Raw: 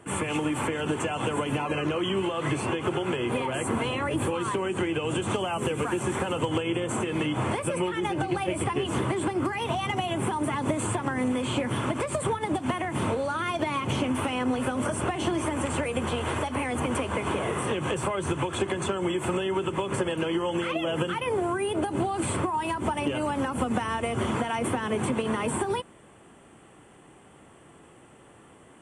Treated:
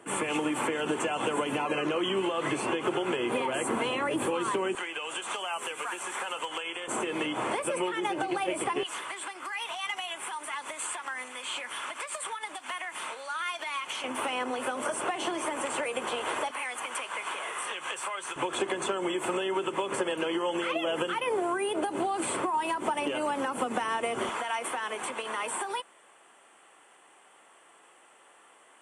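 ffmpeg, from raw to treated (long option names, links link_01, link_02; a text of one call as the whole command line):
ffmpeg -i in.wav -af "asetnsamples=nb_out_samples=441:pad=0,asendcmd='4.75 highpass f 940;6.88 highpass f 370;8.83 highpass f 1300;14.04 highpass f 490;16.51 highpass f 1100;18.36 highpass f 360;24.29 highpass f 750',highpass=270" out.wav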